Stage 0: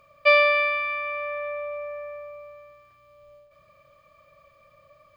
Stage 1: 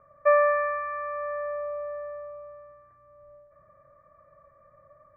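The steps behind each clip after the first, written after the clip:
Butterworth low-pass 2,000 Hz 96 dB per octave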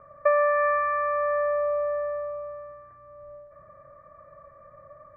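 bass and treble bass −1 dB, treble −13 dB
downward compressor 5 to 1, threshold −27 dBFS, peak gain reduction 10 dB
level +7.5 dB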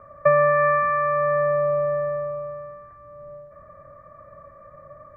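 sub-octave generator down 2 octaves, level −2 dB
level +4 dB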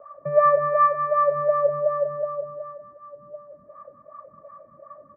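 LFO wah 2.7 Hz 210–1,200 Hz, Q 4.3
single-tap delay 192 ms −9.5 dB
level +8 dB

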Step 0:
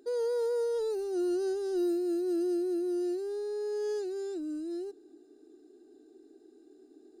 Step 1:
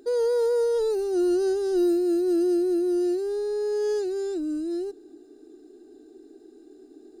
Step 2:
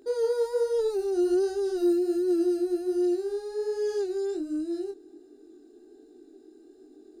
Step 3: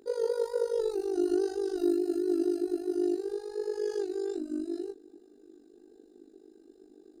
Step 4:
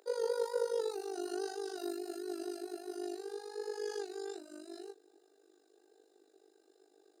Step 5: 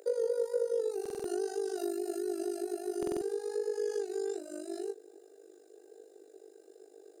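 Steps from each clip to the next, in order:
low-shelf EQ 68 Hz +11 dB; level +7 dB
chorus effect 1.3 Hz, delay 19.5 ms, depth 6.2 ms
amplitude modulation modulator 50 Hz, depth 70%
high-pass filter 530 Hz 24 dB per octave; level +1 dB
octave-band graphic EQ 250/500/1,000/4,000/8,000 Hz −6/+10/−10/−8/+3 dB; downward compressor 3 to 1, threshold −40 dBFS, peak gain reduction 13 dB; buffer that repeats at 0:01.01/0:02.98, samples 2,048, times 4; level +8 dB

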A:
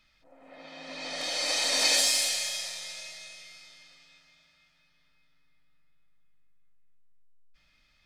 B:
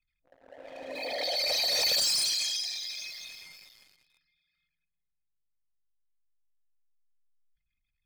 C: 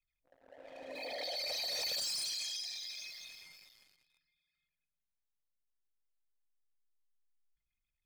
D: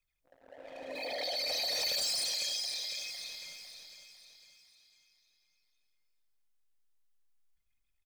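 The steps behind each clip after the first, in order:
spectral envelope exaggerated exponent 3; leveller curve on the samples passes 3; level −8.5 dB
downward compressor 2 to 1, threshold −32 dBFS, peak gain reduction 4 dB; level −6.5 dB
repeating echo 503 ms, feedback 47%, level −10 dB; level +4 dB

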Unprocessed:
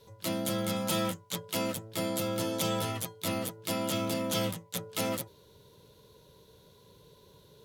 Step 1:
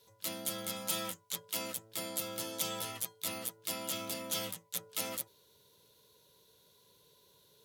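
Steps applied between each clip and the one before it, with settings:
spectral tilt +2.5 dB per octave
level −8 dB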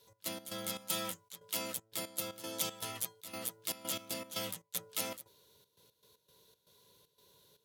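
gate pattern "x.x.xx.xxx.xxx." 117 BPM −12 dB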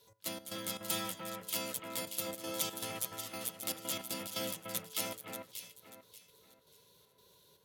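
delay that swaps between a low-pass and a high-pass 293 ms, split 2,300 Hz, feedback 53%, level −3 dB

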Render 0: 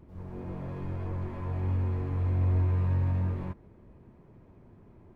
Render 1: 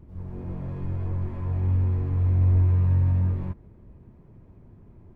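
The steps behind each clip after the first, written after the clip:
low-shelf EQ 200 Hz +10 dB
level −2 dB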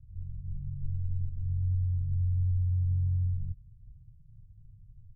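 inverse Chebyshev low-pass filter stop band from 500 Hz, stop band 70 dB
comb filter 6.8 ms, depth 42%
downward compressor, threshold −25 dBFS, peak gain reduction 6.5 dB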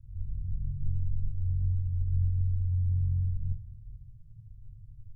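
convolution reverb RT60 0.40 s, pre-delay 3 ms, DRR 4 dB

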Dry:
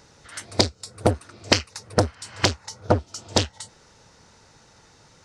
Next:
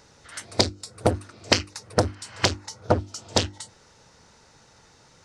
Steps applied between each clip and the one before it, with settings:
mains-hum notches 50/100/150/200/250/300/350 Hz
level −1 dB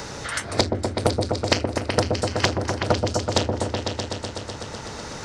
echo whose low-pass opens from repeat to repeat 125 ms, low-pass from 750 Hz, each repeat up 1 octave, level −3 dB
multiband upward and downward compressor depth 70%
level +1 dB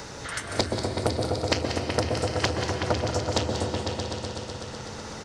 single-tap delay 185 ms −9 dB
convolution reverb RT60 3.0 s, pre-delay 119 ms, DRR 6 dB
level −5 dB

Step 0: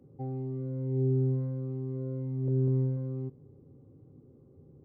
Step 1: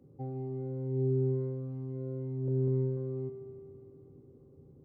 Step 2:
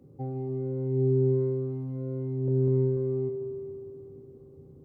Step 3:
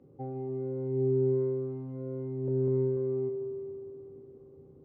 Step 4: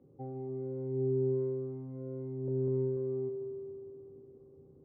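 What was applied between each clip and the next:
spring reverb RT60 3.1 s, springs 32/51 ms, chirp 70 ms, DRR 7 dB; level −2 dB
echo machine with several playback heads 97 ms, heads second and third, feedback 41%, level −15.5 dB; level +4.5 dB
bass and treble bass −7 dB, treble −14 dB
low-pass filter 1,300 Hz 6 dB per octave; level −3.5 dB

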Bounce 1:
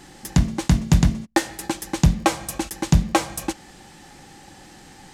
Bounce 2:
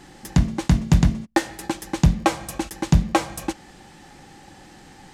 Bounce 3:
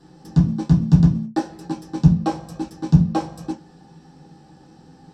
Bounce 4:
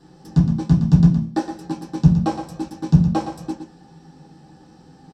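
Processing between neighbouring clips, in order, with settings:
high-shelf EQ 4,400 Hz −5.5 dB
convolution reverb RT60 0.20 s, pre-delay 3 ms, DRR −6 dB; level −17 dB
single-tap delay 116 ms −9 dB

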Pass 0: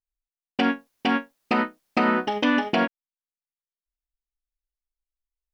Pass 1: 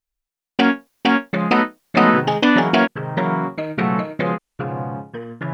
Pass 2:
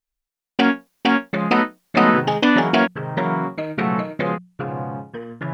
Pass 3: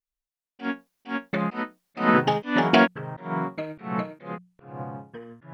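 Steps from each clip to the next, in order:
delay with pitch and tempo change per echo 544 ms, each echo −5 semitones, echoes 2, each echo −6 dB; level +6.5 dB
mains-hum notches 60/120/180 Hz; level −1 dB
volume swells 213 ms; expander for the loud parts 1.5 to 1, over −31 dBFS

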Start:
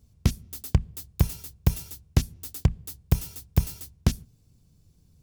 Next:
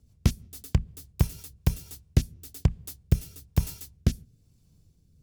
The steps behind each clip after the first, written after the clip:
rotating-speaker cabinet horn 6.3 Hz, later 1.1 Hz, at 0:01.16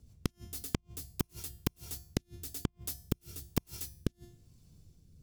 tuned comb filter 350 Hz, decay 0.48 s, harmonics all, mix 70%
gate with flip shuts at −25 dBFS, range −39 dB
level +11.5 dB

